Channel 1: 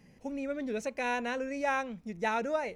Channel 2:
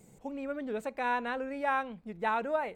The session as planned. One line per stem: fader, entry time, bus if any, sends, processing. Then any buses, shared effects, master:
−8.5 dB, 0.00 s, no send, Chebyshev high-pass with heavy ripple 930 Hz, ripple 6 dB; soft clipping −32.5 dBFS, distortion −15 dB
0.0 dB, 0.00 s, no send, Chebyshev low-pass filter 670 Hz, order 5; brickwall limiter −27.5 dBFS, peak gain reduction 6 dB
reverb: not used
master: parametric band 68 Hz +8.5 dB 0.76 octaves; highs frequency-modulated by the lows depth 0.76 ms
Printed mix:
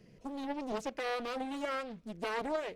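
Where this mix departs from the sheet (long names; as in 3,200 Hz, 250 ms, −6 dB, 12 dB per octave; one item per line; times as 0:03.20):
stem 1 −8.5 dB → +1.0 dB
master: missing parametric band 68 Hz +8.5 dB 0.76 octaves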